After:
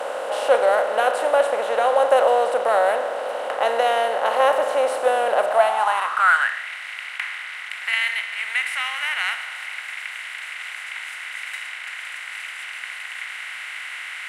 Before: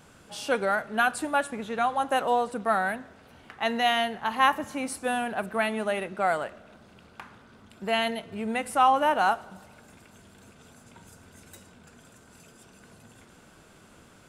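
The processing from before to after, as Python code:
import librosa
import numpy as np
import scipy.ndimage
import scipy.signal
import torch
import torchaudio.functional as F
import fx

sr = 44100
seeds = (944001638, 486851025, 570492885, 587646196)

y = fx.bin_compress(x, sr, power=0.4)
y = fx.filter_sweep_highpass(y, sr, from_hz=540.0, to_hz=2100.0, start_s=5.4, end_s=6.68, q=6.3)
y = y * librosa.db_to_amplitude(-5.5)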